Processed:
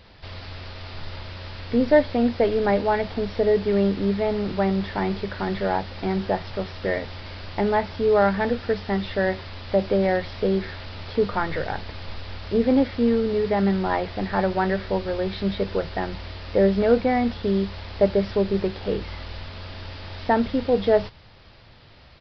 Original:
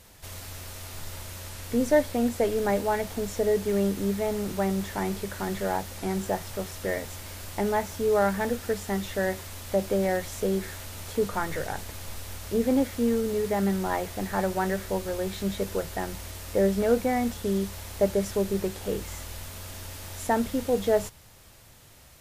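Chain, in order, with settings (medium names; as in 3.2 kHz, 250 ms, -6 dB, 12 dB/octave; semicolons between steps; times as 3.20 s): resampled via 11.025 kHz; trim +4.5 dB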